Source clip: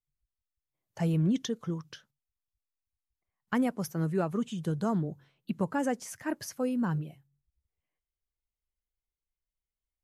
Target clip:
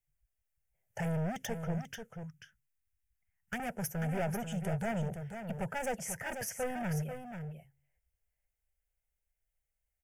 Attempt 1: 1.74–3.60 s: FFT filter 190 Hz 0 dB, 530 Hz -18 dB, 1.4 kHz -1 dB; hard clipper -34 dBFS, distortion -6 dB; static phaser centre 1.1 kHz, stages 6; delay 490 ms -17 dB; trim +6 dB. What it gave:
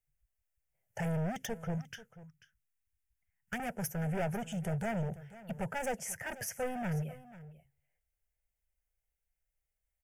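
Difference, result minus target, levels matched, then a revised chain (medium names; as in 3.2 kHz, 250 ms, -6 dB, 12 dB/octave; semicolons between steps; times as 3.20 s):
echo-to-direct -9 dB
1.74–3.60 s: FFT filter 190 Hz 0 dB, 530 Hz -18 dB, 1.4 kHz -1 dB; hard clipper -34 dBFS, distortion -6 dB; static phaser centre 1.1 kHz, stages 6; delay 490 ms -8 dB; trim +6 dB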